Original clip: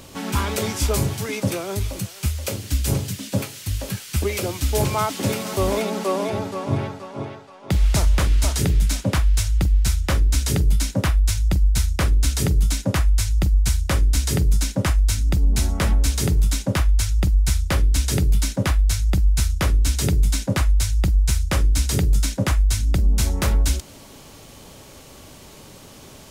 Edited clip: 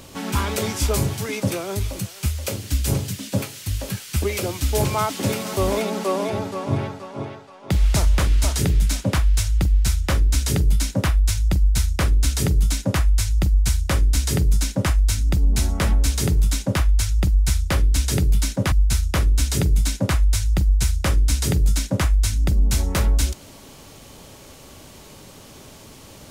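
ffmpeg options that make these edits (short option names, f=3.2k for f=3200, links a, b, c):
-filter_complex "[0:a]asplit=2[a][b];[a]atrim=end=18.722[c];[b]atrim=start=19.188[d];[c][d]acrossfade=d=0.004:c1=hsin:c2=hsin"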